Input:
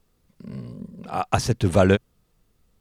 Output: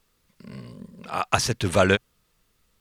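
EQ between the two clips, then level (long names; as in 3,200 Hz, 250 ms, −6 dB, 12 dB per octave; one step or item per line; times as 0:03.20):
tilt shelving filter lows −8 dB
high-shelf EQ 3,000 Hz −7 dB
notch filter 750 Hz, Q 12
+2.5 dB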